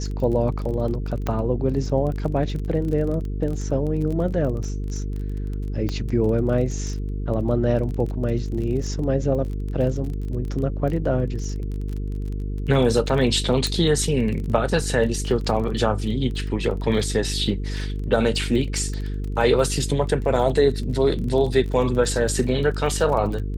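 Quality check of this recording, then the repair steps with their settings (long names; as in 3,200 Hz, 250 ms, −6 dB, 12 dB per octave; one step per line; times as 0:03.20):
mains buzz 50 Hz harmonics 9 −27 dBFS
surface crackle 25 per second −29 dBFS
0:01.27: click −12 dBFS
0:05.89: click −14 dBFS
0:13.67: click −10 dBFS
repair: click removal
hum removal 50 Hz, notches 9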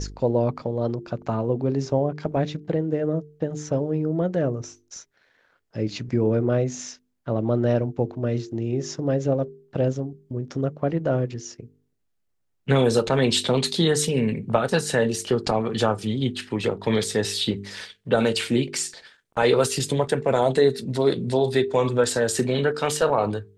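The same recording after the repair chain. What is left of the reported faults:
0:13.67: click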